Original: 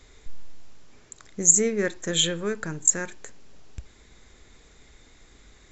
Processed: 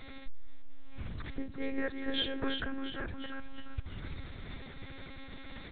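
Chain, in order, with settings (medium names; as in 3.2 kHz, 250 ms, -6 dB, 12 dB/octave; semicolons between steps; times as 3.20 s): compression 2.5:1, threshold -44 dBFS, peak gain reduction 21.5 dB; on a send: frequency-shifting echo 349 ms, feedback 50%, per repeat -64 Hz, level -6 dB; on the sum: monotone LPC vocoder at 8 kHz 270 Hz; trim +7 dB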